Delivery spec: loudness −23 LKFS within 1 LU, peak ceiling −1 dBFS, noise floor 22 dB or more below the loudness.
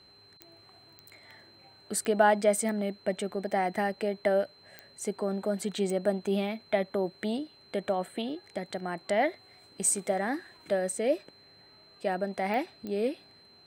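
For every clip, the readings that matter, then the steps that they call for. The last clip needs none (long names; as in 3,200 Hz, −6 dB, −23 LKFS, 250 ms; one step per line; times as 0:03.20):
number of clicks 8; interfering tone 4,100 Hz; level of the tone −56 dBFS; integrated loudness −30.5 LKFS; sample peak −9.5 dBFS; target loudness −23.0 LKFS
→ click removal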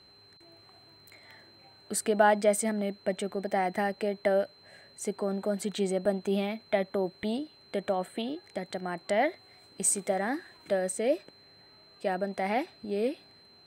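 number of clicks 0; interfering tone 4,100 Hz; level of the tone −56 dBFS
→ notch filter 4,100 Hz, Q 30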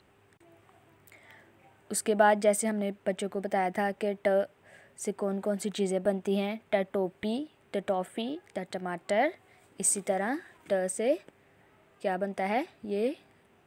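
interfering tone none found; integrated loudness −30.5 LKFS; sample peak −9.5 dBFS; target loudness −23.0 LKFS
→ level +7.5 dB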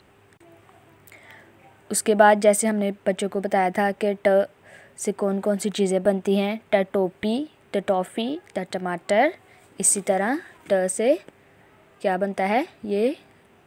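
integrated loudness −23.0 LKFS; sample peak −2.0 dBFS; background noise floor −56 dBFS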